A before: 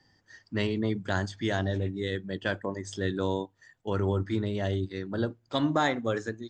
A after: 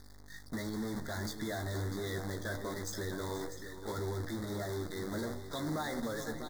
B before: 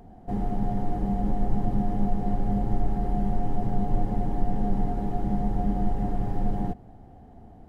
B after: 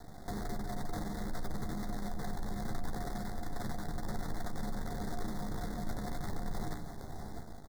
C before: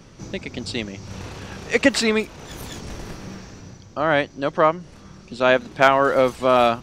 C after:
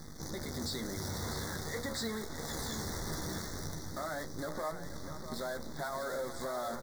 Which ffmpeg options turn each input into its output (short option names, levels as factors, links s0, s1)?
-filter_complex "[0:a]lowpass=7800,bandreject=f=60:t=h:w=6,bandreject=f=120:t=h:w=6,bandreject=f=180:t=h:w=6,bandreject=f=240:t=h:w=6,bandreject=f=300:t=h:w=6,bandreject=f=360:t=h:w=6,bandreject=f=420:t=h:w=6,bandreject=f=480:t=h:w=6,bandreject=f=540:t=h:w=6,bandreject=f=600:t=h:w=6,dynaudnorm=f=140:g=5:m=2,aeval=exprs='val(0)+0.00355*(sin(2*PI*50*n/s)+sin(2*PI*2*50*n/s)/2+sin(2*PI*3*50*n/s)/3+sin(2*PI*4*50*n/s)/4+sin(2*PI*5*50*n/s)/5)':c=same,acompressor=threshold=0.1:ratio=6,crystalizer=i=1:c=0,acrusher=bits=6:dc=4:mix=0:aa=0.000001,asoftclip=type=tanh:threshold=0.0944,alimiter=level_in=2.37:limit=0.0631:level=0:latency=1:release=17,volume=0.422,asuperstop=centerf=2700:order=12:qfactor=2,asplit=2[s0][s1];[s1]adelay=13,volume=0.422[s2];[s0][s2]amix=inputs=2:normalize=0,asplit=2[s3][s4];[s4]aecho=0:1:481|646:0.2|0.299[s5];[s3][s5]amix=inputs=2:normalize=0,volume=0.891"